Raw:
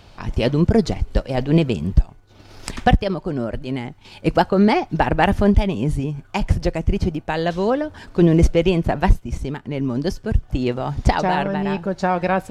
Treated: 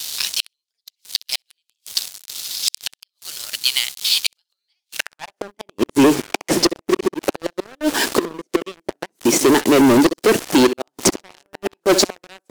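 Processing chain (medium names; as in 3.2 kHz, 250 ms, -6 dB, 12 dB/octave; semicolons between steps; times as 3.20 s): bit crusher 8-bit; high-pass 220 Hz 12 dB/octave; inverted gate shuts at -13 dBFS, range -35 dB; 5.07–7.24 s: treble shelf 3.5 kHz -4 dB; feedback delay 64 ms, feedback 21%, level -20 dB; high-pass sweep 3.8 kHz -> 330 Hz, 4.88–5.48 s; waveshaping leveller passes 5; peaking EQ 8.8 kHz +9.5 dB 2.5 oct; level rider gain up to 4 dB; trim -1 dB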